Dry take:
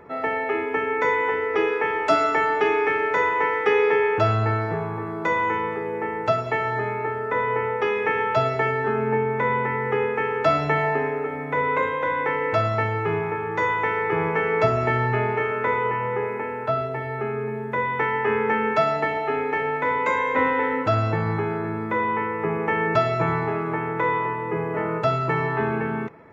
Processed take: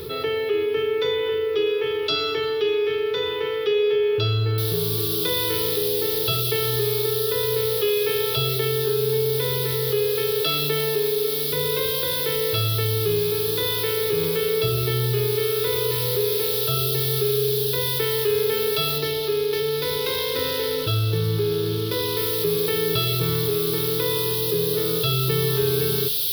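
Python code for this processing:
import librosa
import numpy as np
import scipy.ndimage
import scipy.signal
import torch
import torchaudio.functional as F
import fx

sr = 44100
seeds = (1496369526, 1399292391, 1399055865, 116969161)

y = fx.noise_floor_step(x, sr, seeds[0], at_s=4.58, before_db=-68, after_db=-41, tilt_db=0.0)
y = fx.highpass(y, sr, hz=170.0, slope=24, at=(10.41, 11.53))
y = fx.median_filter(y, sr, points=9, at=(18.98, 22.17))
y = fx.rider(y, sr, range_db=10, speed_s=2.0)
y = fx.curve_eq(y, sr, hz=(150.0, 230.0, 420.0, 710.0, 1400.0, 2000.0, 3500.0, 5000.0, 7600.0, 11000.0), db=(0, -20, 2, -25, -12, -16, 14, 8, -18, 10))
y = fx.env_flatten(y, sr, amount_pct=50)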